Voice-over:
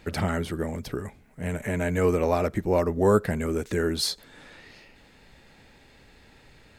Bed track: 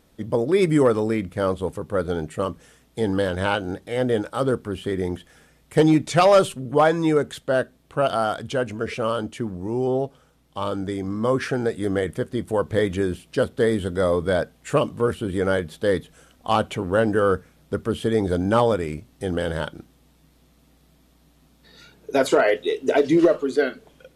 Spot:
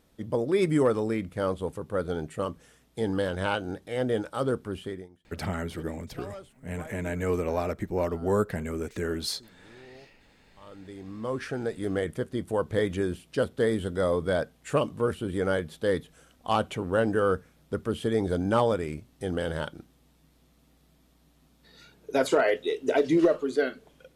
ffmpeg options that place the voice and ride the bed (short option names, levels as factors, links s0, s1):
-filter_complex "[0:a]adelay=5250,volume=0.562[s0];[1:a]volume=7.5,afade=t=out:st=4.77:d=0.31:silence=0.0749894,afade=t=in:st=10.56:d=1.49:silence=0.0707946[s1];[s0][s1]amix=inputs=2:normalize=0"